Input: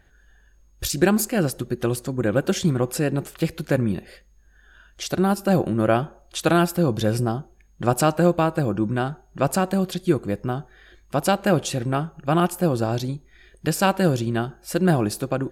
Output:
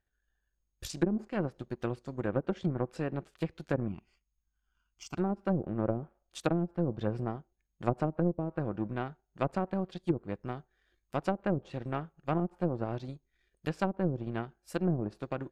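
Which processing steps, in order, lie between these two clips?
power-law waveshaper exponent 1.4; 3.88–5.17 s: static phaser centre 2.6 kHz, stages 8; low-pass that closes with the level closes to 360 Hz, closed at -16.5 dBFS; trim -6.5 dB

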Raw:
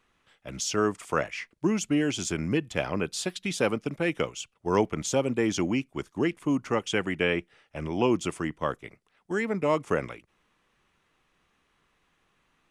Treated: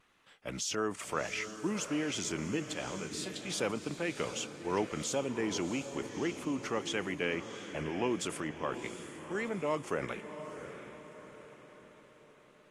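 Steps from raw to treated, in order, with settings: bass shelf 130 Hz -10 dB; in parallel at -2.5 dB: compressor with a negative ratio -38 dBFS, ratio -1; 2.73–3.51 s: on the sum: feedback comb 64 Hz, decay 0.16 s, harmonics all, mix 90%; vibrato 1.6 Hz 39 cents; on a send: echo that smears into a reverb 713 ms, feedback 47%, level -10 dB; on the sum: trim -8 dB; AAC 48 kbps 32 kHz

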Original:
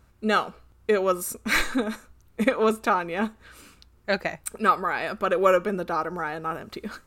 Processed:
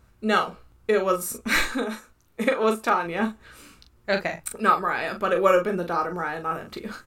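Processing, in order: 1.66–3.06 s: bass shelf 170 Hz -9 dB; early reflections 17 ms -10.5 dB, 41 ms -7 dB

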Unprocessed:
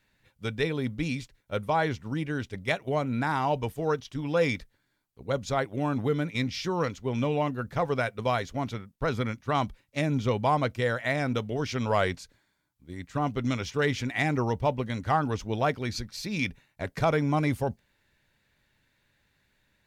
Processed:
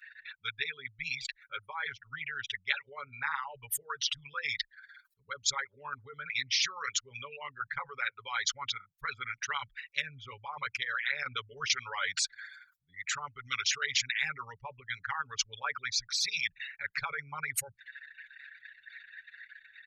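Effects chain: resonances exaggerated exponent 3; elliptic high-pass 1.4 kHz, stop band 50 dB; comb 7.1 ms, depth 86%; 11.23–11.70 s: compressor with a negative ratio -47 dBFS, ratio -1; spectrum-flattening compressor 4:1

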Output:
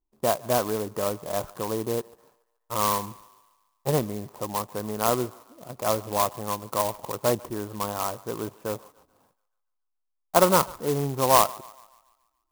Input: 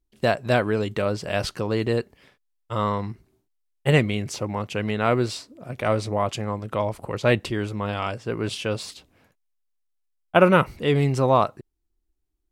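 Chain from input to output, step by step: four-pole ladder low-pass 1.2 kHz, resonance 55%; peaking EQ 66 Hz -7 dB 2.4 oct; thinning echo 143 ms, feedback 58%, high-pass 660 Hz, level -20 dB; sampling jitter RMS 0.084 ms; trim +5.5 dB

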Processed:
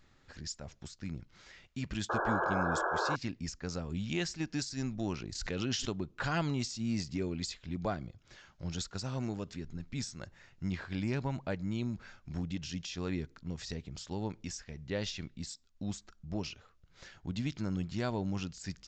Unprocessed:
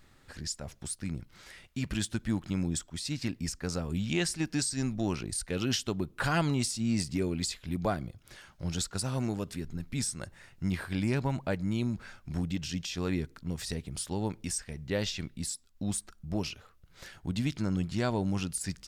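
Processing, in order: resampled via 16 kHz; 2.09–3.16 s: painted sound noise 320–1700 Hz -28 dBFS; 5.35–5.97 s: swell ahead of each attack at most 37 dB/s; trim -4.5 dB

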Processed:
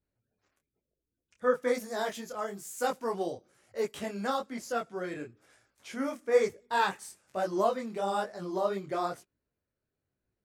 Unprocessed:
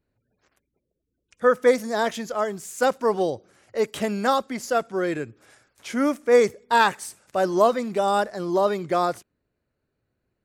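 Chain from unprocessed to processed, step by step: 1.74–3.89 s: treble shelf 10 kHz +9.5 dB; detune thickener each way 37 cents; trim -5.5 dB

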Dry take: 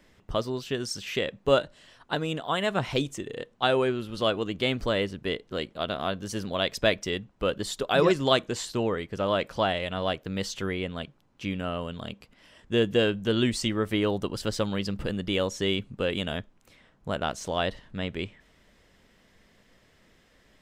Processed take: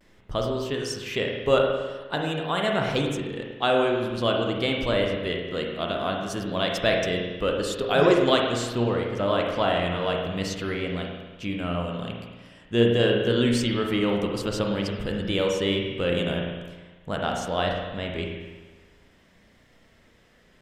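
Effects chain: spring tank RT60 1.3 s, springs 34/51 ms, chirp 65 ms, DRR 0.5 dB; vibrato 0.47 Hz 33 cents

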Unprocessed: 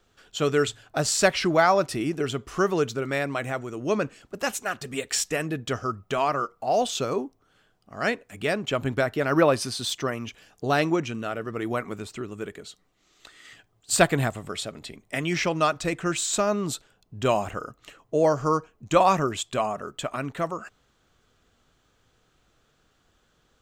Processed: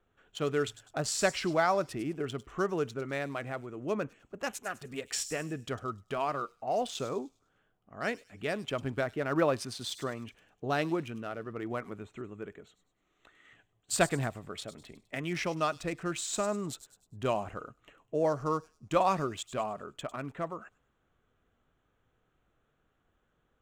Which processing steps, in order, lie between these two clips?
local Wiener filter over 9 samples; feedback echo behind a high-pass 101 ms, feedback 38%, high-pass 5.1 kHz, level -8.5 dB; trim -7.5 dB

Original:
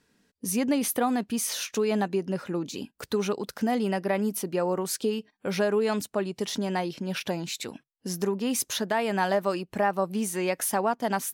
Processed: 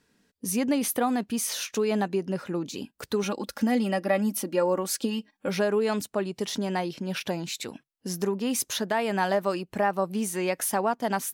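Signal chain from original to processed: 3.23–5.49 s: comb 3.6 ms, depth 67%

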